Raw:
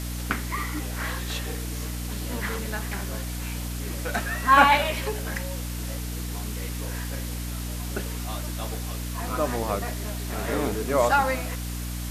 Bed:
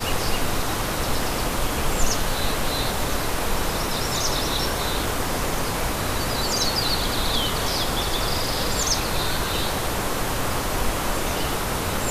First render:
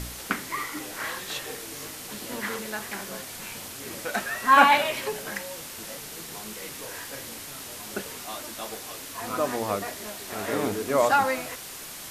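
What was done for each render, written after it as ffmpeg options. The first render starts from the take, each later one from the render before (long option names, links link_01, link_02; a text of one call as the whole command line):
ffmpeg -i in.wav -af "bandreject=frequency=60:width_type=h:width=4,bandreject=frequency=120:width_type=h:width=4,bandreject=frequency=180:width_type=h:width=4,bandreject=frequency=240:width_type=h:width=4,bandreject=frequency=300:width_type=h:width=4" out.wav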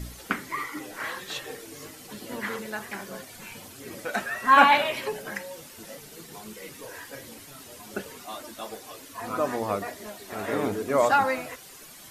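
ffmpeg -i in.wav -af "afftdn=noise_reduction=10:noise_floor=-40" out.wav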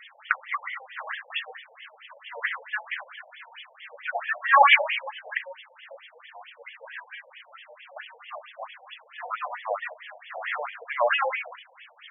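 ffmpeg -i in.wav -af "crystalizer=i=8:c=0,afftfilt=real='re*between(b*sr/1024,640*pow(2500/640,0.5+0.5*sin(2*PI*4.5*pts/sr))/1.41,640*pow(2500/640,0.5+0.5*sin(2*PI*4.5*pts/sr))*1.41)':imag='im*between(b*sr/1024,640*pow(2500/640,0.5+0.5*sin(2*PI*4.5*pts/sr))/1.41,640*pow(2500/640,0.5+0.5*sin(2*PI*4.5*pts/sr))*1.41)':win_size=1024:overlap=0.75" out.wav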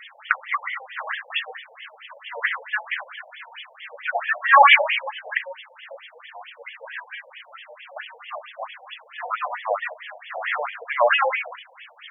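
ffmpeg -i in.wav -af "volume=5dB,alimiter=limit=-2dB:level=0:latency=1" out.wav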